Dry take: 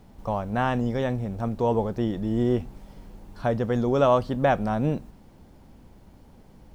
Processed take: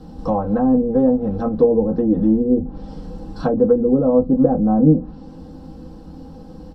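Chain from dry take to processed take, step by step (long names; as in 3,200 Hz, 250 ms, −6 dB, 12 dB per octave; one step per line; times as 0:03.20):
treble cut that deepens with the level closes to 420 Hz, closed at −20 dBFS
comb filter 3.8 ms, depth 65%
in parallel at +2 dB: downward compressor, threshold −31 dBFS, peak gain reduction 12 dB
on the sum: convolution reverb RT60 0.10 s, pre-delay 3 ms, DRR −2.5 dB
level −6.5 dB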